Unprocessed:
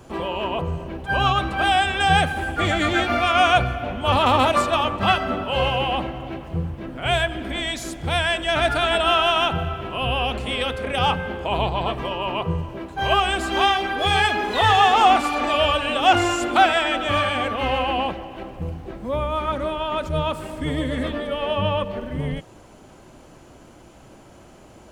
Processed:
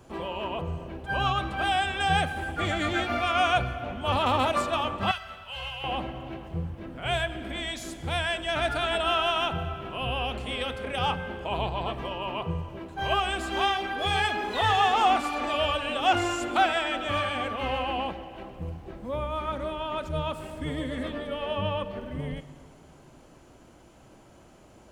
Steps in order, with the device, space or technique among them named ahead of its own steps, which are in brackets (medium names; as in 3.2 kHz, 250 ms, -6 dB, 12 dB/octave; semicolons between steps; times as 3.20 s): compressed reverb return (on a send at -11.5 dB: reverberation RT60 1.7 s, pre-delay 22 ms + compression, threshold -24 dBFS, peak gain reduction 12.5 dB); 5.11–5.84 s: on the sum: amplifier tone stack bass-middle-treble 10-0-10; trim -7 dB